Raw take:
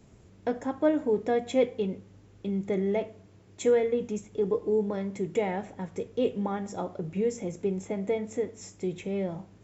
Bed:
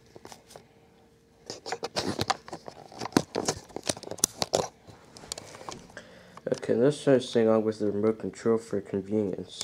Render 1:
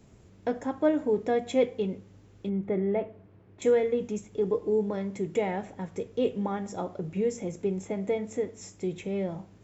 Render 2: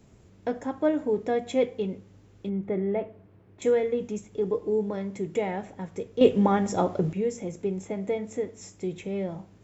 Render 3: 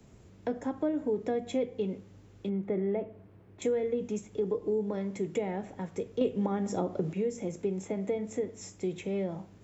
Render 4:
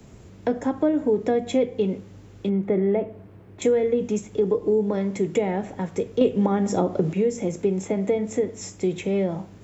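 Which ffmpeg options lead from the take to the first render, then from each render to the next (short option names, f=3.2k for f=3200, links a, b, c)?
-filter_complex "[0:a]asettb=1/sr,asplit=3[a][b][c];[a]atrim=end=2.494[d];[b]atrim=start=2.49:end=3.62,asetpts=PTS-STARTPTS,afade=t=in:d=0.004:c=qsin,afade=t=out:st=1.126:d=0.004:c=qsin,lowpass=2k[e];[c]atrim=start=3.616[f];[d][e]acrossfade=d=0.004:c1=hsin:c2=qsin[g];[g][f]acrossfade=d=0.004:c1=qsin:c2=hsin"
-filter_complex "[0:a]asplit=3[a][b][c];[a]atrim=end=6.212[d];[b]atrim=start=6.208:end=7.132,asetpts=PTS-STARTPTS,volume=9dB[e];[c]atrim=start=7.128[f];[d][e]acrossfade=d=0.004:c1=hsin:c2=hsin[g];[g][f]acrossfade=d=0.004:c1=hsin:c2=hsin"
-filter_complex "[0:a]acrossover=split=160|500[a][b][c];[a]acompressor=threshold=-48dB:ratio=4[d];[b]acompressor=threshold=-29dB:ratio=4[e];[c]acompressor=threshold=-39dB:ratio=4[f];[d][e][f]amix=inputs=3:normalize=0"
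-af "volume=9dB"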